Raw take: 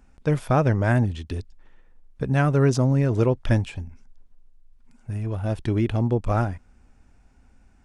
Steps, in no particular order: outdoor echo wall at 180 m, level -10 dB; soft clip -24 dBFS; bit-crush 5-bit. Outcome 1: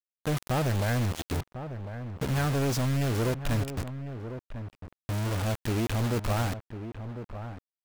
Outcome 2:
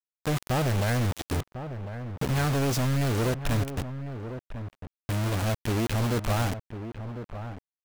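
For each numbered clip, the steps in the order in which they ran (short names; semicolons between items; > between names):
bit-crush > soft clip > outdoor echo; soft clip > bit-crush > outdoor echo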